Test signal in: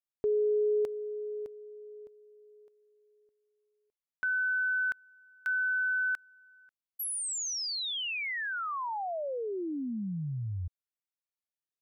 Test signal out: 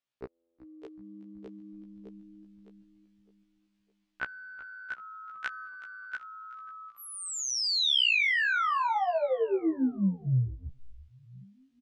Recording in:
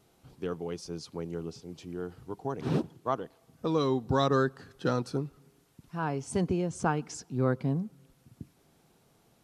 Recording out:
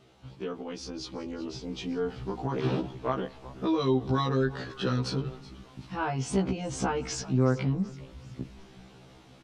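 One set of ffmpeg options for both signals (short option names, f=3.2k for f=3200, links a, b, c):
-filter_complex "[0:a]acompressor=threshold=-40dB:ratio=4:attack=11:release=39:knee=1:detection=rms,lowpass=5.2k,equalizer=f=3k:w=1.4:g=4,asplit=5[a][b][c][d][e];[b]adelay=376,afreqshift=-110,volume=-18.5dB[f];[c]adelay=752,afreqshift=-220,volume=-24.2dB[g];[d]adelay=1128,afreqshift=-330,volume=-29.9dB[h];[e]adelay=1504,afreqshift=-440,volume=-35.5dB[i];[a][f][g][h][i]amix=inputs=5:normalize=0,dynaudnorm=f=350:g=9:m=6dB,afftfilt=real='re*1.73*eq(mod(b,3),0)':imag='im*1.73*eq(mod(b,3),0)':win_size=2048:overlap=0.75,volume=8dB"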